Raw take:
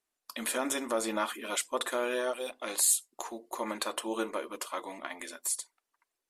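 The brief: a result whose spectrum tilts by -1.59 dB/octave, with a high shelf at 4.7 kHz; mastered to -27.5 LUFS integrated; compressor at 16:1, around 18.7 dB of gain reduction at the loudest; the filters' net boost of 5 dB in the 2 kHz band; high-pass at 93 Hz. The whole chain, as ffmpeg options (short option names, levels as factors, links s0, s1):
-af "highpass=93,equalizer=f=2000:t=o:g=5.5,highshelf=f=4700:g=6.5,acompressor=threshold=0.0178:ratio=16,volume=3.98"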